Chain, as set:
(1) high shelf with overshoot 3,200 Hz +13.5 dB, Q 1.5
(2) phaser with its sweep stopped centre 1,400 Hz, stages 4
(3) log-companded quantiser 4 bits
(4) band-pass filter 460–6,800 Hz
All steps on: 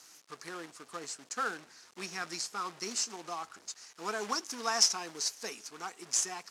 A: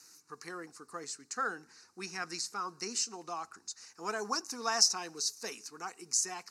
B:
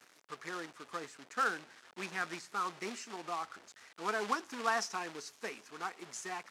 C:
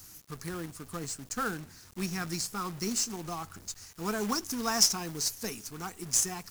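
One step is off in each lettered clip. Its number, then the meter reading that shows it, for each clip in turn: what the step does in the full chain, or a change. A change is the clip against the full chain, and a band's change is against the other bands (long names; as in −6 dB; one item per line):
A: 3, distortion level −13 dB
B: 1, 8 kHz band −14.5 dB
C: 4, 125 Hz band +15.0 dB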